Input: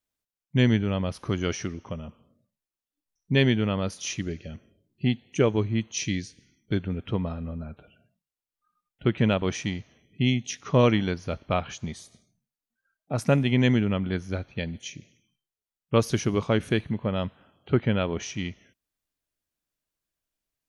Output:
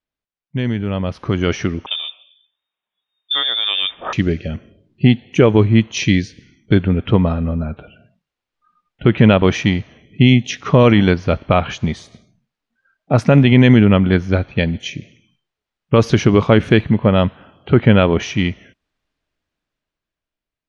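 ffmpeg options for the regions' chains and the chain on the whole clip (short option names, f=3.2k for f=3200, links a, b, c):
-filter_complex "[0:a]asettb=1/sr,asplit=3[a][b][c];[a]atrim=end=1.864[d];[b]atrim=start=1.86:end=4.13,asetpts=PTS-STARTPTS,afade=t=in:d=0.004:c=qsin,afade=t=out:st=2.266:d=0.004:c=qsin,bandreject=f=1.7k:w=15,acompressor=threshold=-27dB:ratio=8:attack=3.2:release=140:knee=1:detection=peak,lowpass=f=3.1k:t=q:w=0.5098,lowpass=f=3.1k:t=q:w=0.6013,lowpass=f=3.1k:t=q:w=0.9,lowpass=f=3.1k:t=q:w=2.563,afreqshift=-3700[e];[c]atrim=start=4.126[f];[d][e]acrossfade=d=0.004:c1=hsin:c2=qsin[g];[g][f]acrossfade=d=0.004:c1=qsin:c2=hsin,lowpass=3.5k,alimiter=limit=-15.5dB:level=0:latency=1:release=37,dynaudnorm=f=300:g=9:m=13.5dB,volume=2dB"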